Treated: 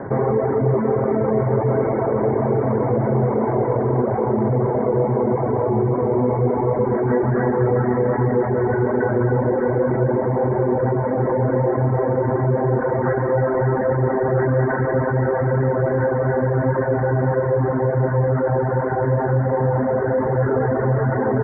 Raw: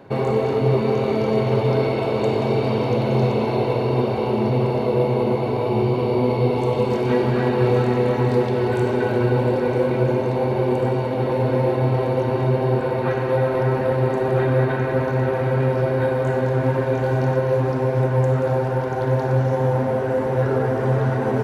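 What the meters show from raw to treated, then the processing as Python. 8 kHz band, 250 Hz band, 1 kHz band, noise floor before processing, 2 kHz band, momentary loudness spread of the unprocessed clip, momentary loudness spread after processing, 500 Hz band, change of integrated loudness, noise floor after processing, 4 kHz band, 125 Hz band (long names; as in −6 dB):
can't be measured, +1.0 dB, +1.5 dB, −23 dBFS, +0.5 dB, 2 LU, 1 LU, +1.0 dB, +1.0 dB, −22 dBFS, below −40 dB, +0.5 dB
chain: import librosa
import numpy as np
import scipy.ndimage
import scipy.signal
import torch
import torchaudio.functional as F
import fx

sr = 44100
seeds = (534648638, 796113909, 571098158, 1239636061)

y = scipy.signal.sosfilt(scipy.signal.butter(16, 2000.0, 'lowpass', fs=sr, output='sos'), x)
y = fx.dereverb_blind(y, sr, rt60_s=0.66)
y = fx.env_flatten(y, sr, amount_pct=50)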